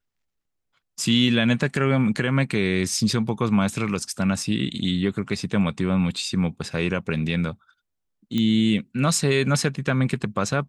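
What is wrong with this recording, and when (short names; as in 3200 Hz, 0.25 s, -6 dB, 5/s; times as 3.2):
8.38 pop -13 dBFS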